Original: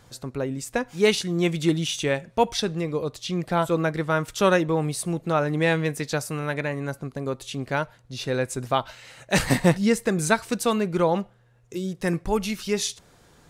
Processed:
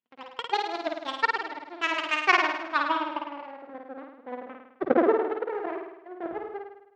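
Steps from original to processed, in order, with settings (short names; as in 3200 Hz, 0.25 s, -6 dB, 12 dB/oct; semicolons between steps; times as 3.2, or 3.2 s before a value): low-pass sweep 1600 Hz -> 280 Hz, 3.77–7.33; power-law curve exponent 2; wide varispeed 1.94×; BPF 160–3700 Hz; on a send: flutter echo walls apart 9 m, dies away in 0.82 s; on the sum: gain +1.5 dB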